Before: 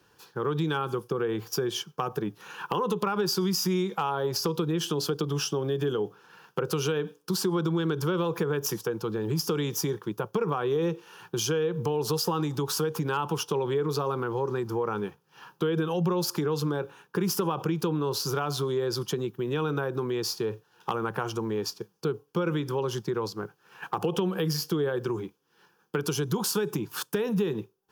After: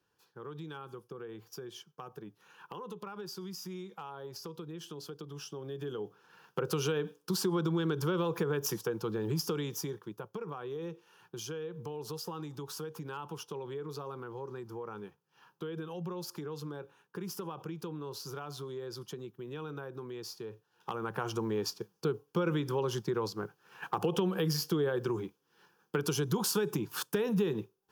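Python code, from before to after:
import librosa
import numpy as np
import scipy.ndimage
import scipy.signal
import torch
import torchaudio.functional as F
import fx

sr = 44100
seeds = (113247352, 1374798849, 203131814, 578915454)

y = fx.gain(x, sr, db=fx.line((5.33, -16.0), (6.66, -4.0), (9.29, -4.0), (10.34, -13.0), (20.51, -13.0), (21.35, -3.0)))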